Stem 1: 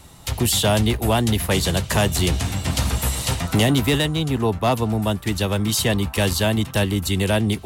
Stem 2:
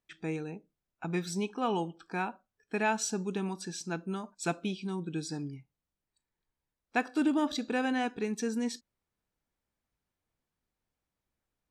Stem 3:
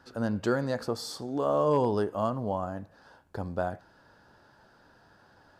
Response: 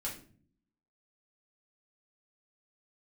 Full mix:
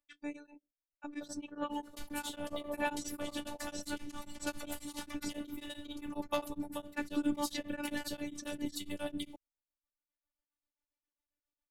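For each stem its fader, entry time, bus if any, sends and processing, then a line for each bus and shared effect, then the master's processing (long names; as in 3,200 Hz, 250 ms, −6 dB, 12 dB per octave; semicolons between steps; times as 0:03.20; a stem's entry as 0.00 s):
−1.0 dB, 1.70 s, send −12.5 dB, reverb reduction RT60 0.78 s; downward compressor, threshold −23 dBFS, peak gain reduction 9 dB; two-band tremolo in antiphase 9.8 Hz, depth 70%, crossover 720 Hz; automatic ducking −11 dB, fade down 0.50 s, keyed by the second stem
−2.0 dB, 0.00 s, no send, reverb reduction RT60 1.8 s
−8.5 dB, 1.05 s, no send, amplitude tremolo 12 Hz, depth 75%; Gaussian smoothing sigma 4.1 samples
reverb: on, RT60 0.45 s, pre-delay 3 ms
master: phases set to zero 293 Hz; tremolo along a rectified sine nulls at 7.4 Hz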